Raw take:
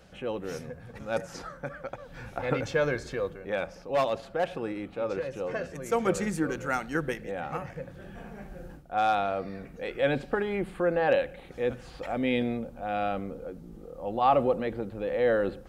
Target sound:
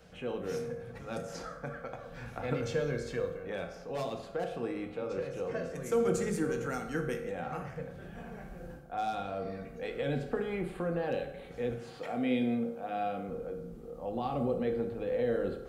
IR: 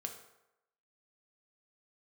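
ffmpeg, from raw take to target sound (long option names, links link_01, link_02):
-filter_complex "[0:a]asettb=1/sr,asplit=3[link_01][link_02][link_03];[link_01]atrim=end=11.804[link_04];[link_02]atrim=start=11.8:end=13.29,asetpts=PTS-STARTPTS,afade=type=in:duration=0.004:curve=qsin,afade=type=out:start_time=1.486:duration=0.004:curve=qsin,highpass=150[link_05];[link_03]atrim=start=13.286[link_06];[link_04][link_05]acrossfade=duration=0.004:curve1=hsin:curve2=qsin[link_07];[link_07][link_06]acrossfade=duration=0.004:curve1=qsin:curve2=hsin,acrossover=split=400|4300[link_08][link_09][link_10];[link_09]acompressor=threshold=-35dB:ratio=6[link_11];[link_08][link_11][link_10]amix=inputs=3:normalize=0[link_12];[1:a]atrim=start_sample=2205[link_13];[link_12][link_13]afir=irnorm=-1:irlink=0"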